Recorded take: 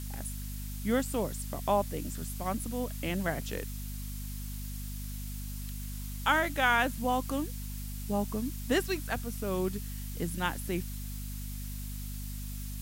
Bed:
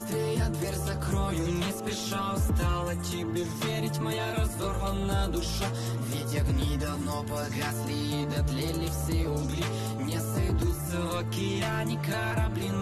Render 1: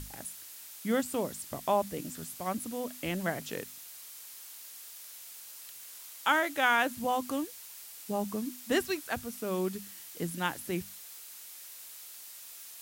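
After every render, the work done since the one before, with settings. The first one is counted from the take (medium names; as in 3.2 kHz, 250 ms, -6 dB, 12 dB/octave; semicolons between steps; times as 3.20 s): hum notches 50/100/150/200/250 Hz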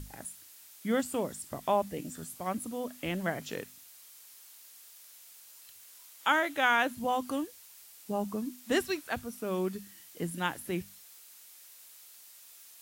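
noise print and reduce 6 dB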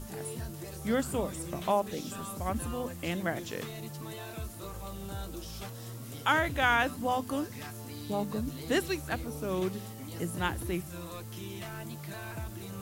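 add bed -11.5 dB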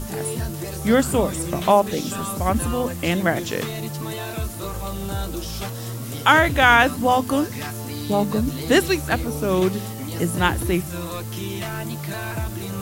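trim +12 dB; peak limiter -1 dBFS, peak gain reduction 1 dB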